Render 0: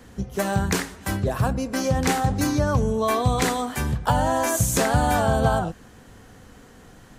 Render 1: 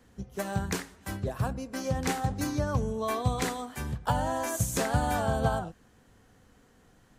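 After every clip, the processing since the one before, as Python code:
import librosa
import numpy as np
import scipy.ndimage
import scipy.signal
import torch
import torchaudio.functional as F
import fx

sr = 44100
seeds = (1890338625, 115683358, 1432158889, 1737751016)

y = fx.upward_expand(x, sr, threshold_db=-30.0, expansion=1.5)
y = F.gain(torch.from_numpy(y), -5.5).numpy()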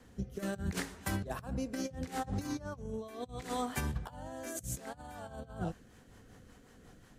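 y = fx.over_compress(x, sr, threshold_db=-35.0, ratio=-0.5)
y = fx.rotary_switch(y, sr, hz=0.7, then_hz=5.5, switch_at_s=5.16)
y = F.gain(torch.from_numpy(y), -1.0).numpy()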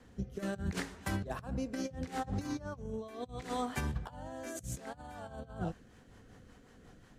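y = fx.high_shelf(x, sr, hz=10000.0, db=-11.5)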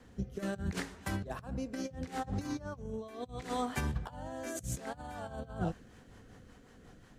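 y = fx.rider(x, sr, range_db=10, speed_s=2.0)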